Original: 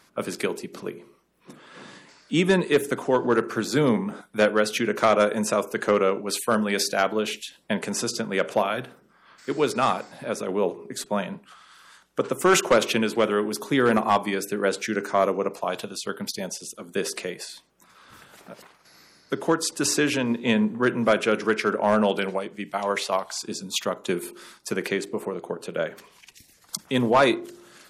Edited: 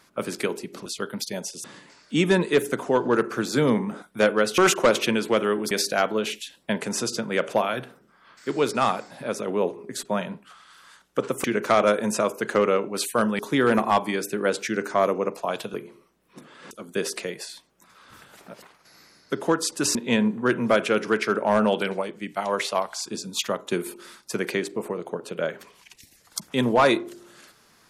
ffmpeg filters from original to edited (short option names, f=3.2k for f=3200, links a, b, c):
-filter_complex "[0:a]asplit=10[a][b][c][d][e][f][g][h][i][j];[a]atrim=end=0.862[k];[b]atrim=start=15.928:end=16.712[l];[c]atrim=start=1.828:end=4.772[m];[d]atrim=start=12.448:end=13.582[n];[e]atrim=start=6.718:end=12.452[o];[f]atrim=start=4.768:end=6.722[p];[g]atrim=start=13.578:end=15.932[q];[h]atrim=start=0.858:end=1.832[r];[i]atrim=start=16.708:end=19.952[s];[j]atrim=start=20.318[t];[k][l]acrossfade=d=0.004:c1=hsin:c2=hsin[u];[u][m]acrossfade=d=0.004:c1=hsin:c2=hsin[v];[v][n]acrossfade=d=0.004:c1=hsin:c2=hsin[w];[w][o]acrossfade=d=0.004:c1=hsin:c2=hsin[x];[x][p]acrossfade=d=0.004:c1=hsin:c2=hsin[y];[y][q]acrossfade=d=0.004:c1=hsin:c2=hsin[z];[z][r]acrossfade=d=0.004:c1=hsin:c2=hsin[aa];[aa][s]acrossfade=d=0.004:c1=hsin:c2=hsin[ab];[ab][t]acrossfade=d=0.004:c1=hsin:c2=hsin"